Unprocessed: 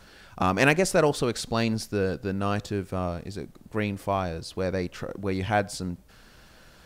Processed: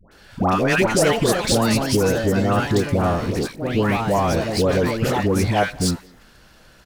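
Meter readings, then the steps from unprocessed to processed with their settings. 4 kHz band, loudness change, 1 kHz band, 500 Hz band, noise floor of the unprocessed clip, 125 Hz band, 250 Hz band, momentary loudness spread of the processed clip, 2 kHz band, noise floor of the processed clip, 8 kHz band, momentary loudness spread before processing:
+9.0 dB, +7.5 dB, +7.0 dB, +7.5 dB, -53 dBFS, +8.5 dB, +8.5 dB, 6 LU, +5.0 dB, -50 dBFS, +10.0 dB, 13 LU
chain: waveshaping leveller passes 2; compression, threshold -21 dBFS, peak gain reduction 10.5 dB; phase dispersion highs, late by 116 ms, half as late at 980 Hz; ever faster or slower copies 467 ms, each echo +3 st, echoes 3, each echo -6 dB; speakerphone echo 210 ms, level -23 dB; trim +6 dB

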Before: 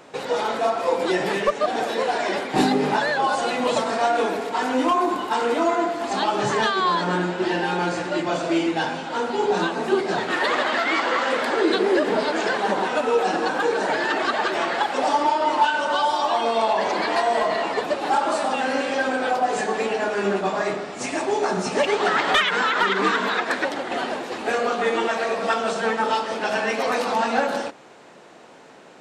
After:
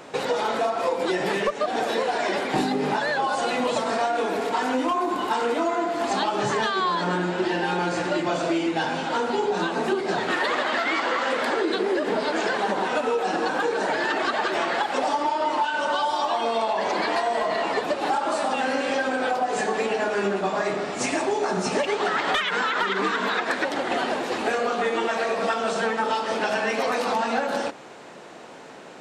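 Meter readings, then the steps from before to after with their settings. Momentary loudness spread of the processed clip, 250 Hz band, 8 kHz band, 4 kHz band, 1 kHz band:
2 LU, -2.0 dB, -1.0 dB, -2.0 dB, -2.5 dB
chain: compression, threshold -25 dBFS, peak gain reduction 11.5 dB; trim +4 dB

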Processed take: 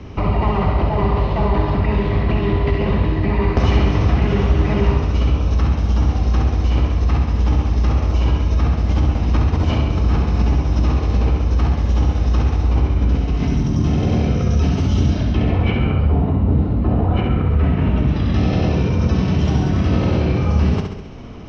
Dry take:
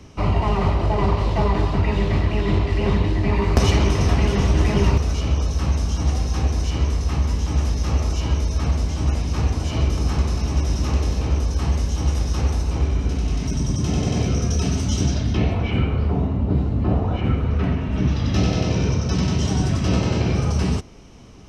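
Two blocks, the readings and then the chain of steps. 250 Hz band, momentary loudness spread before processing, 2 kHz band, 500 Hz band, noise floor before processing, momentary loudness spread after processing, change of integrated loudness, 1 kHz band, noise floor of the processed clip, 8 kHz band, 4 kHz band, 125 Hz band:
+3.5 dB, 4 LU, +2.0 dB, +3.0 dB, -26 dBFS, 2 LU, +3.5 dB, +3.0 dB, -22 dBFS, no reading, -2.0 dB, +3.5 dB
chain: in parallel at -2 dB: compressor with a negative ratio -25 dBFS, ratio -0.5; on the sum: distance through air 230 m; flutter echo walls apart 11.5 m, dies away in 0.79 s

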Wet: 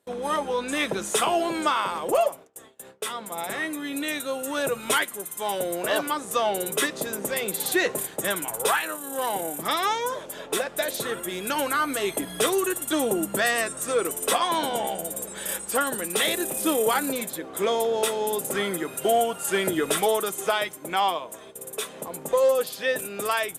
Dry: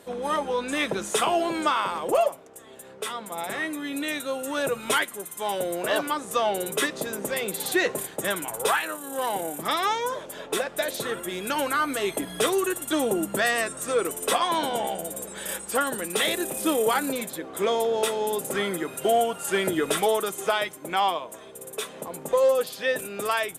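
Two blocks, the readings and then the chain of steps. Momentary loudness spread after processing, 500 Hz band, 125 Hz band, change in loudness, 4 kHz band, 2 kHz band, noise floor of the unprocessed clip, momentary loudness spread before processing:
8 LU, 0.0 dB, 0.0 dB, +0.5 dB, +0.5 dB, 0.0 dB, -44 dBFS, 9 LU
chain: gate with hold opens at -35 dBFS; treble shelf 7.6 kHz +4.5 dB

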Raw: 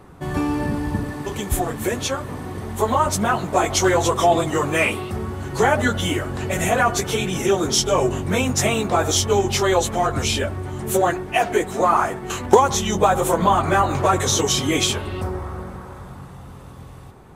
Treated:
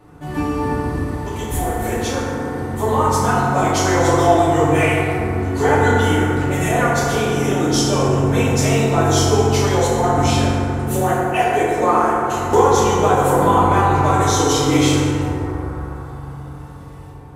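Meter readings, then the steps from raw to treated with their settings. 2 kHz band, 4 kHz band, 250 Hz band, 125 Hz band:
+2.0 dB, -1.0 dB, +5.0 dB, +7.0 dB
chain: FDN reverb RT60 2.9 s, high-frequency decay 0.35×, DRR -8 dB; trim -6.5 dB

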